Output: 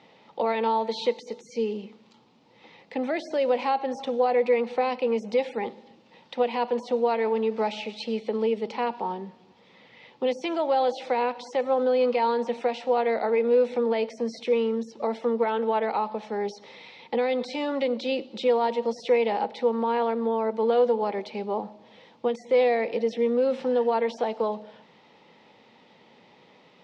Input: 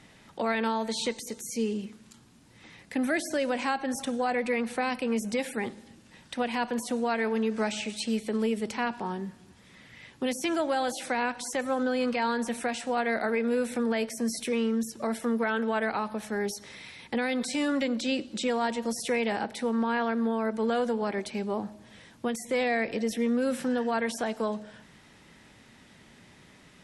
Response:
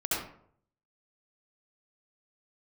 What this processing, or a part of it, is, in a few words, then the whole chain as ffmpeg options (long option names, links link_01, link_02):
kitchen radio: -af "highpass=210,equalizer=frequency=290:width_type=q:width=4:gain=-3,equalizer=frequency=490:width_type=q:width=4:gain=9,equalizer=frequency=860:width_type=q:width=4:gain=8,equalizer=frequency=1600:width_type=q:width=4:gain=-10,lowpass=frequency=4600:width=0.5412,lowpass=frequency=4600:width=1.3066"